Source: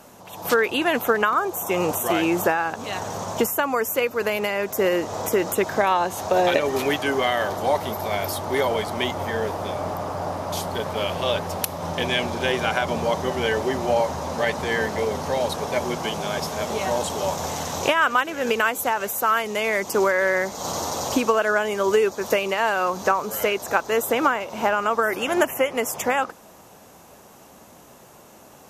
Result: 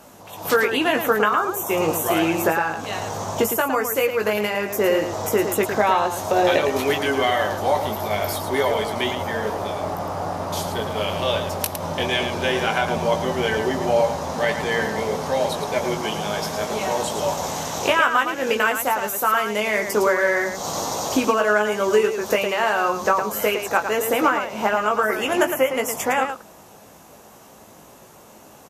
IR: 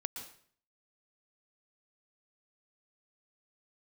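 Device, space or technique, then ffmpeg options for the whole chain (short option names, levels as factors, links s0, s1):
slapback doubling: -filter_complex "[0:a]asplit=3[s0][s1][s2];[s1]adelay=19,volume=0.501[s3];[s2]adelay=110,volume=0.422[s4];[s0][s3][s4]amix=inputs=3:normalize=0"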